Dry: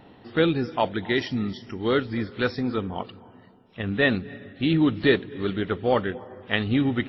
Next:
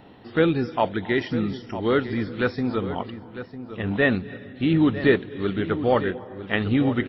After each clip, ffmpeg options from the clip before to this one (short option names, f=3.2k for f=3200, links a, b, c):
-filter_complex "[0:a]asplit=2[a][b];[b]adelay=952,lowpass=f=1.5k:p=1,volume=-11.5dB,asplit=2[c][d];[d]adelay=952,lowpass=f=1.5k:p=1,volume=0.31,asplit=2[e][f];[f]adelay=952,lowpass=f=1.5k:p=1,volume=0.31[g];[a][c][e][g]amix=inputs=4:normalize=0,acrossover=split=2900[h][i];[i]acompressor=threshold=-45dB:ratio=4:attack=1:release=60[j];[h][j]amix=inputs=2:normalize=0,volume=1.5dB"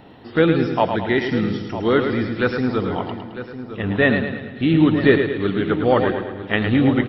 -af "aecho=1:1:108|216|324|432|540|648:0.447|0.223|0.112|0.0558|0.0279|0.014,volume=3.5dB"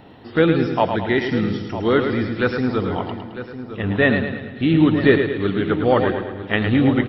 -af "equalizer=f=92:w=4.4:g=3"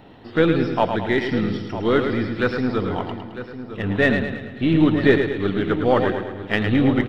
-af "aeval=exprs='if(lt(val(0),0),0.708*val(0),val(0))':c=same"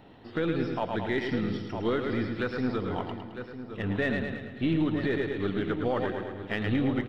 -af "alimiter=limit=-11.5dB:level=0:latency=1:release=169,volume=-6.5dB"